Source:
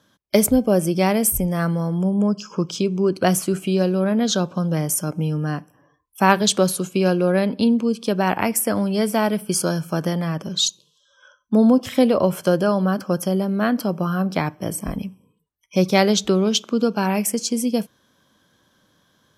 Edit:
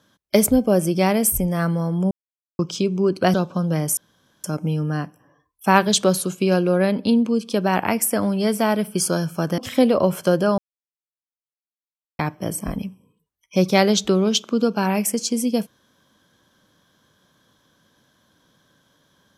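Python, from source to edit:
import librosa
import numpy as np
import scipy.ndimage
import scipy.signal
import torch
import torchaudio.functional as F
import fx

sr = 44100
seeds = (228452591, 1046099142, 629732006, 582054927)

y = fx.edit(x, sr, fx.silence(start_s=2.11, length_s=0.48),
    fx.cut(start_s=3.34, length_s=1.01),
    fx.insert_room_tone(at_s=4.98, length_s=0.47),
    fx.cut(start_s=10.12, length_s=1.66),
    fx.silence(start_s=12.78, length_s=1.61), tone=tone)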